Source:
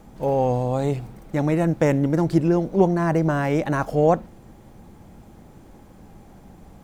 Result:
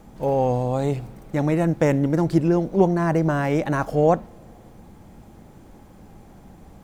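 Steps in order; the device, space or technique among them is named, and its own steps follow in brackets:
compressed reverb return (on a send at −13 dB: convolution reverb RT60 1.1 s, pre-delay 36 ms + downward compressor, threshold −34 dBFS, peak gain reduction 19.5 dB)

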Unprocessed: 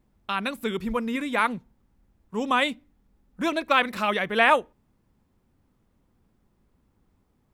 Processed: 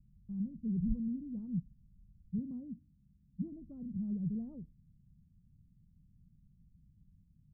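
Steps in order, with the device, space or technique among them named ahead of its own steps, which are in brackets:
0:02.38–0:03.52: high-pass filter 74 Hz
the neighbour's flat through the wall (low-pass filter 170 Hz 24 dB per octave; parametric band 160 Hz +7.5 dB 0.61 octaves)
level +3 dB

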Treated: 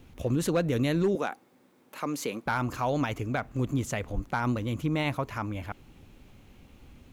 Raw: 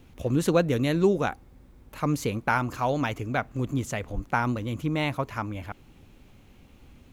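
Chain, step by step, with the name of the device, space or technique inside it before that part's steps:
clipper into limiter (hard clipping −14.5 dBFS, distortion −22 dB; brickwall limiter −19 dBFS, peak gain reduction 4.5 dB)
0:01.15–0:02.46: Bessel high-pass filter 280 Hz, order 4

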